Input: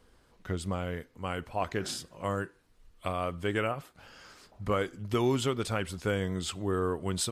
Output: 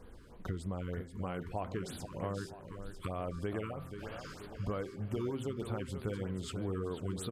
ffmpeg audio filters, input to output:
ffmpeg -i in.wav -filter_complex "[0:a]tiltshelf=frequency=1100:gain=4.5,bandreject=frequency=130.4:width_type=h:width=4,bandreject=frequency=260.8:width_type=h:width=4,bandreject=frequency=391.2:width_type=h:width=4,bandreject=frequency=521.6:width_type=h:width=4,bandreject=frequency=652:width_type=h:width=4,bandreject=frequency=782.4:width_type=h:width=4,bandreject=frequency=912.8:width_type=h:width=4,bandreject=frequency=1043.2:width_type=h:width=4,bandreject=frequency=1173.6:width_type=h:width=4,bandreject=frequency=1304:width_type=h:width=4,bandreject=frequency=1434.4:width_type=h:width=4,bandreject=frequency=1564.8:width_type=h:width=4,bandreject=frequency=1695.2:width_type=h:width=4,bandreject=frequency=1825.6:width_type=h:width=4,bandreject=frequency=1956:width_type=h:width=4,bandreject=frequency=2086.4:width_type=h:width=4,bandreject=frequency=2216.8:width_type=h:width=4,bandreject=frequency=2347.2:width_type=h:width=4,bandreject=frequency=2477.6:width_type=h:width=4,acompressor=threshold=-43dB:ratio=4,asplit=2[link_01][link_02];[link_02]aecho=0:1:482|964|1446|1928|2410|2892:0.355|0.177|0.0887|0.0444|0.0222|0.0111[link_03];[link_01][link_03]amix=inputs=2:normalize=0,afftfilt=real='re*(1-between(b*sr/1024,620*pow(6900/620,0.5+0.5*sin(2*PI*3.2*pts/sr))/1.41,620*pow(6900/620,0.5+0.5*sin(2*PI*3.2*pts/sr))*1.41))':imag='im*(1-between(b*sr/1024,620*pow(6900/620,0.5+0.5*sin(2*PI*3.2*pts/sr))/1.41,620*pow(6900/620,0.5+0.5*sin(2*PI*3.2*pts/sr))*1.41))':win_size=1024:overlap=0.75,volume=5.5dB" out.wav

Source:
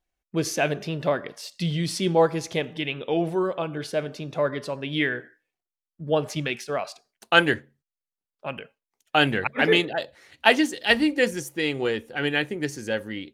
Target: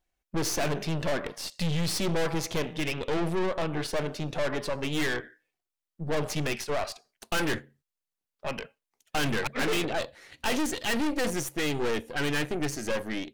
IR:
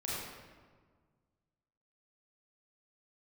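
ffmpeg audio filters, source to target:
-af "acontrast=62,aeval=exprs='(tanh(20*val(0)+0.8)-tanh(0.8))/20':channel_layout=same"

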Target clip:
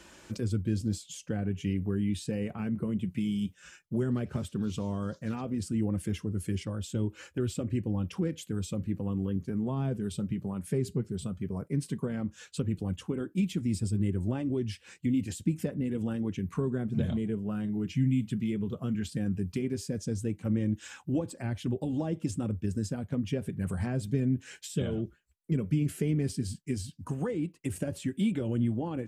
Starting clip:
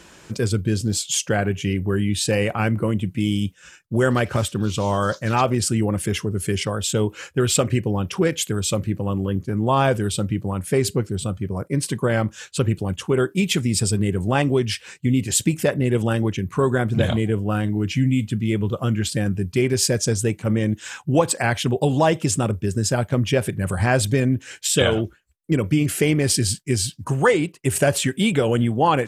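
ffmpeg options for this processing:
ffmpeg -i in.wav -filter_complex "[0:a]acrossover=split=340[link_01][link_02];[link_02]acompressor=threshold=-37dB:ratio=5[link_03];[link_01][link_03]amix=inputs=2:normalize=0,flanger=delay=3.3:depth=1.7:regen=-49:speed=0.14:shape=triangular,volume=-2.5dB" out.wav

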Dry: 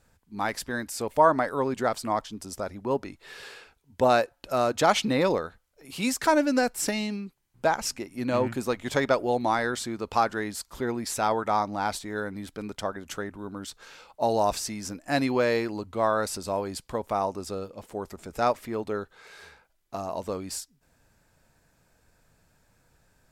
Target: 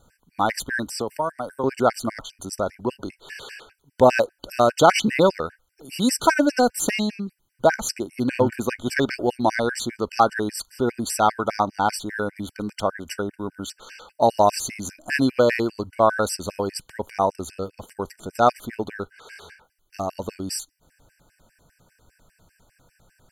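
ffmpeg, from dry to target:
ffmpeg -i in.wav -filter_complex "[0:a]asettb=1/sr,asplit=3[link_01][link_02][link_03];[link_01]atrim=end=0.874[link_04];[link_02]atrim=start=0.87:end=1.64,asetpts=PTS-STARTPTS,afade=type=in:duration=0.004:curve=qsin,afade=type=out:start_time=0.766:duration=0.004:curve=qsin,acrossover=split=190|7700[link_05][link_06][link_07];[link_05]acompressor=threshold=-48dB:ratio=4[link_08];[link_06]acompressor=threshold=-32dB:ratio=4[link_09];[link_07]acompressor=threshold=-47dB:ratio=4[link_10];[link_08][link_09][link_10]amix=inputs=3:normalize=0[link_11];[link_03]atrim=start=1.636[link_12];[link_04][link_11]acrossfade=duration=0.004:curve1=hsin:curve2=qsin[link_13];[link_13][link_12]acrossfade=duration=0.004:curve1=qsin:curve2=hsin,afftfilt=real='re*gt(sin(2*PI*5*pts/sr)*(1-2*mod(floor(b*sr/1024/1500),2)),0)':imag='im*gt(sin(2*PI*5*pts/sr)*(1-2*mod(floor(b*sr/1024/1500),2)),0)':win_size=1024:overlap=0.75,volume=8dB" out.wav

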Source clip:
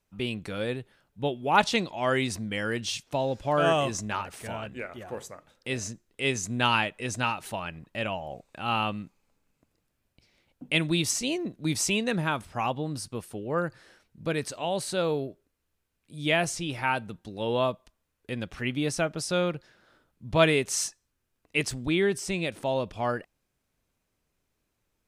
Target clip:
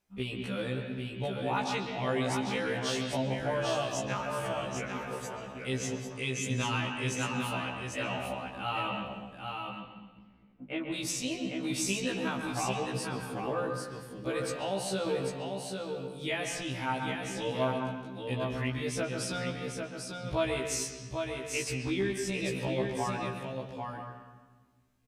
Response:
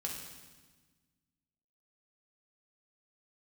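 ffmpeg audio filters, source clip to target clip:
-filter_complex "[0:a]asettb=1/sr,asplit=3[link_01][link_02][link_03];[link_01]atrim=end=9.004[link_04];[link_02]atrim=start=9:end=10.94,asetpts=PTS-STARTPTS,afade=type=in:duration=0.004:curve=qsin,afade=type=out:start_time=1.936:duration=0.004:curve=qsin,lowpass=1500[link_05];[link_03]atrim=start=10.936[link_06];[link_04][link_05]acrossfade=duration=0.004:curve1=hsin:curve2=qsin[link_07];[link_07][link_06]acrossfade=duration=0.004:curve1=qsin:curve2=hsin,acompressor=threshold=-29dB:ratio=3,aecho=1:1:796:0.562,asplit=2[link_08][link_09];[1:a]atrim=start_sample=2205,lowpass=3900,adelay=135[link_10];[link_09][link_10]afir=irnorm=-1:irlink=0,volume=-3.5dB[link_11];[link_08][link_11]amix=inputs=2:normalize=0,afftfilt=real='re*1.73*eq(mod(b,3),0)':imag='im*1.73*eq(mod(b,3),0)':win_size=2048:overlap=0.75"

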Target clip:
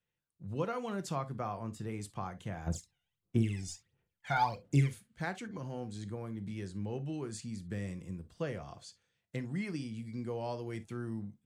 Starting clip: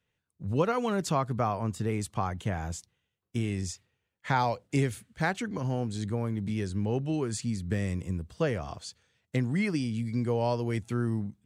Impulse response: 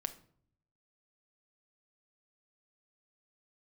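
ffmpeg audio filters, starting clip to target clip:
-filter_complex "[0:a]asplit=3[link_01][link_02][link_03];[link_01]afade=type=out:start_time=2.66:duration=0.02[link_04];[link_02]aphaser=in_gain=1:out_gain=1:delay=1.4:decay=0.78:speed=1.5:type=sinusoidal,afade=type=in:start_time=2.66:duration=0.02,afade=type=out:start_time=4.88:duration=0.02[link_05];[link_03]afade=type=in:start_time=4.88:duration=0.02[link_06];[link_04][link_05][link_06]amix=inputs=3:normalize=0[link_07];[1:a]atrim=start_sample=2205,atrim=end_sample=3087[link_08];[link_07][link_08]afir=irnorm=-1:irlink=0,volume=-8.5dB"

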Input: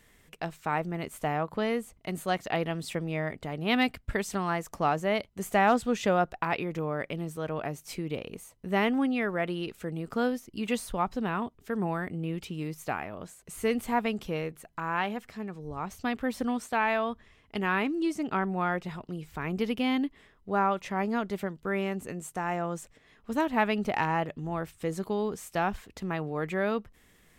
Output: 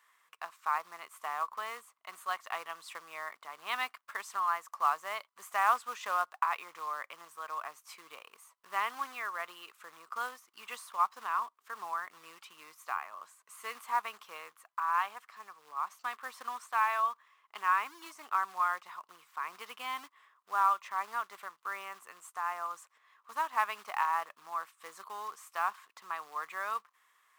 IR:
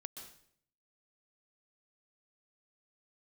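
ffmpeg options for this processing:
-af "acrusher=bits=4:mode=log:mix=0:aa=0.000001,highpass=frequency=1100:width_type=q:width=6.4,volume=-9dB"

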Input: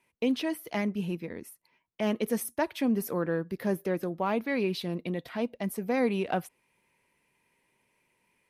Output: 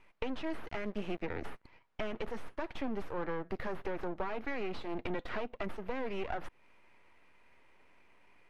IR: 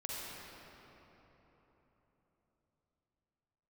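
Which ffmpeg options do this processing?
-filter_complex "[0:a]highpass=frequency=230:width=0.5412,highpass=frequency=230:width=1.3066,asplit=3[link_01][link_02][link_03];[link_01]afade=type=out:start_time=0.67:duration=0.02[link_04];[link_02]aeval=exprs='sgn(val(0))*max(abs(val(0))-0.00251,0)':channel_layout=same,afade=type=in:start_time=0.67:duration=0.02,afade=type=out:start_time=1.21:duration=0.02[link_05];[link_03]afade=type=in:start_time=1.21:duration=0.02[link_06];[link_04][link_05][link_06]amix=inputs=3:normalize=0,crystalizer=i=6.5:c=0,aeval=exprs='(tanh(12.6*val(0)+0.35)-tanh(0.35))/12.6':channel_layout=same,acompressor=threshold=-36dB:ratio=6,aeval=exprs='max(val(0),0)':channel_layout=same,lowpass=1800,volume=9.5dB"

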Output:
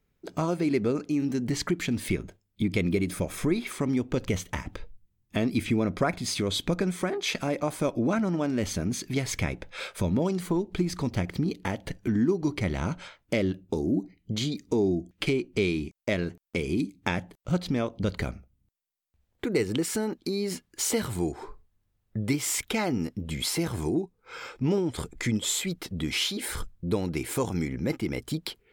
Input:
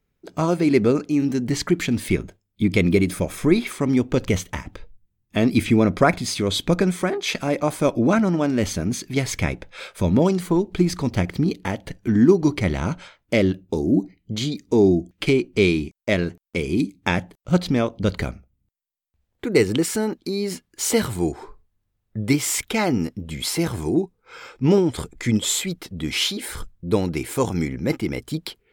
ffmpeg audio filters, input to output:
ffmpeg -i in.wav -af "acompressor=threshold=-29dB:ratio=2" out.wav

